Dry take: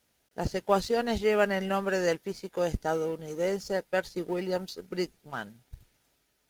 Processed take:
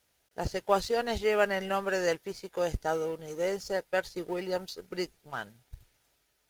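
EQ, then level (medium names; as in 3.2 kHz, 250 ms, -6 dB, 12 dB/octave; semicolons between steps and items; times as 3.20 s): peaking EQ 220 Hz -7 dB 1.2 oct; 0.0 dB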